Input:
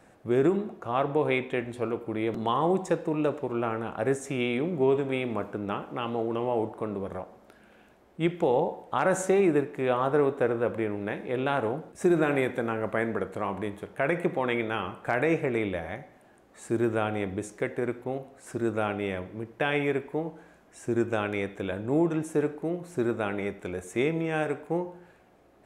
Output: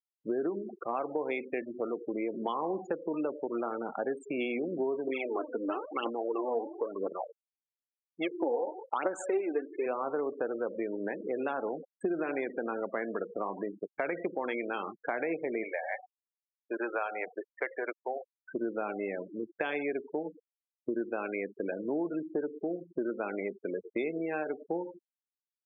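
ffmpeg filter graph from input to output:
ffmpeg -i in.wav -filter_complex "[0:a]asettb=1/sr,asplit=3[link_01][link_02][link_03];[link_01]atrim=end=5.074[link_04];[link_02]atrim=start=5.07:end=9.86,asetpts=PTS-STARTPTS,afade=type=in:duration=0.004:curve=qsin,afade=type=out:start_time=4.786:duration=0.004:curve=qsin,agate=range=-33dB:threshold=-49dB:ratio=3:release=100:detection=peak,lowshelf=frequency=240:width_type=q:width=1.5:gain=-7.5,aphaser=in_gain=1:out_gain=1:delay=4.4:decay=0.65:speed=1:type=triangular[link_05];[link_03]atrim=start=9.856[link_06];[link_04][link_05]acrossfade=duration=0.004:curve1=hsin:curve2=qsin[link_07];[link_07][link_06]acrossfade=duration=0.004:curve1=qsin:curve2=hsin,asettb=1/sr,asplit=3[link_08][link_09][link_10];[link_08]atrim=end=15.634[link_11];[link_09]atrim=start=15.63:end=18.52,asetpts=PTS-STARTPTS,afade=type=in:duration=0.004:curve=qsin,afade=type=out:start_time=2.886:duration=0.004:curve=qsin,acontrast=31,acrossover=split=570 3600:gain=0.0891 1 0.224[link_12][link_13][link_14];[link_12][link_13][link_14]amix=inputs=3:normalize=0[link_15];[link_10]atrim=start=18.516[link_16];[link_11][link_15]acrossfade=duration=0.004:curve1=hsin:curve2=qsin[link_17];[link_17][link_16]acrossfade=duration=0.004:curve1=qsin:curve2=hsin,afftfilt=real='re*gte(hypot(re,im),0.0355)':imag='im*gte(hypot(re,im),0.0355)':win_size=1024:overlap=0.75,highpass=frequency=230:width=0.5412,highpass=frequency=230:width=1.3066,acompressor=threshold=-34dB:ratio=4,volume=3dB" out.wav

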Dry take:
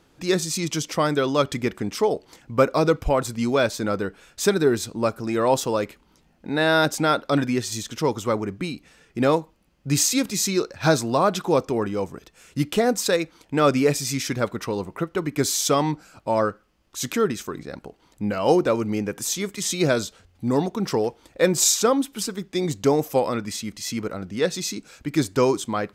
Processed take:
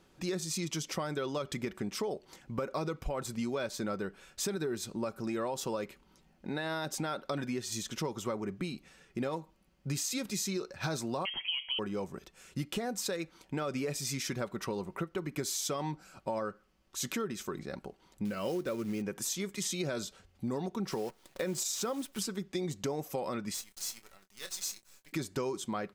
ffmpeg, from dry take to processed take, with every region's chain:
ffmpeg -i in.wav -filter_complex "[0:a]asettb=1/sr,asplit=3[link_01][link_02][link_03];[link_01]atrim=end=11.254[link_04];[link_02]atrim=start=11.25:end=11.79,asetpts=PTS-STARTPTS,afade=type=in:duration=0.004:curve=qsin,afade=type=out:start_time=0.536:duration=0.004:curve=qsin,bandreject=frequency=159.7:width_type=h:width=4,bandreject=frequency=319.4:width_type=h:width=4,bandreject=frequency=479.1:width_type=h:width=4,bandreject=frequency=638.8:width_type=h:width=4,bandreject=frequency=798.5:width_type=h:width=4,bandreject=frequency=958.2:width_type=h:width=4,bandreject=frequency=1117.9:width_type=h:width=4,bandreject=frequency=1277.6:width_type=h:width=4,bandreject=frequency=1437.3:width_type=h:width=4,bandreject=frequency=1597:width_type=h:width=4,lowpass=frequency=2900:width_type=q:width=0.5098,lowpass=frequency=2900:width_type=q:width=0.6013,lowpass=frequency=2900:width_type=q:width=0.9,lowpass=frequency=2900:width_type=q:width=2.563,afreqshift=-3400[link_05];[link_03]atrim=start=11.786[link_06];[link_04][link_05]acrossfade=duration=0.004:curve1=hsin:curve2=qsin[link_07];[link_07][link_06]acrossfade=duration=0.004:curve1=qsin:curve2=hsin,asettb=1/sr,asplit=3[link_08][link_09][link_10];[link_08]atrim=end=18.254[link_11];[link_09]atrim=start=18.25:end=19.02,asetpts=PTS-STARTPTS,afade=type=in:duration=0.004:curve=qsin,afade=type=out:start_time=0.766:duration=0.004:curve=qsin,lowpass=9000,equalizer=frequency=840:width=2.8:gain=-10,acrusher=bits=5:mode=log:mix=0:aa=0.000001[link_12];[link_10]atrim=start=19.016[link_13];[link_11][link_12]acrossfade=duration=0.004:curve1=hsin:curve2=qsin[link_14];[link_14][link_13]acrossfade=duration=0.004:curve1=qsin:curve2=hsin,asettb=1/sr,asplit=3[link_15][link_16][link_17];[link_15]atrim=end=20.914[link_18];[link_16]atrim=start=20.91:end=22.19,asetpts=PTS-STARTPTS,afade=type=in:duration=0.004:curve=qsin,afade=type=out:start_time=1.276:duration=0.004:curve=qsin,highpass=86,acrusher=bits=7:dc=4:mix=0:aa=0.000001[link_19];[link_17]atrim=start=22.186[link_20];[link_18][link_19]acrossfade=duration=0.004:curve1=hsin:curve2=qsin[link_21];[link_21][link_20]acrossfade=duration=0.004:curve1=qsin:curve2=hsin,asettb=1/sr,asplit=3[link_22][link_23][link_24];[link_22]atrim=end=23.544[link_25];[link_23]atrim=start=23.54:end=25.13,asetpts=PTS-STARTPTS,afade=type=in:duration=0.004:curve=qsin,afade=type=out:start_time=1.586:duration=0.004:curve=qsin,aderivative,acrusher=bits=7:dc=4:mix=0:aa=0.000001,asplit=2[link_26][link_27];[link_27]adelay=26,volume=-11dB[link_28];[link_26][link_28]amix=inputs=2:normalize=0,atrim=end_sample=70119[link_29];[link_24]atrim=start=25.126[link_30];[link_25][link_29]acrossfade=duration=0.004:curve1=hsin:curve2=qsin[link_31];[link_31][link_30]acrossfade=duration=0.004:curve1=qsin:curve2=hsin,aecho=1:1:5.3:0.33,alimiter=limit=-12.5dB:level=0:latency=1:release=61,acompressor=threshold=-27dB:ratio=4,volume=-5.5dB" out.wav

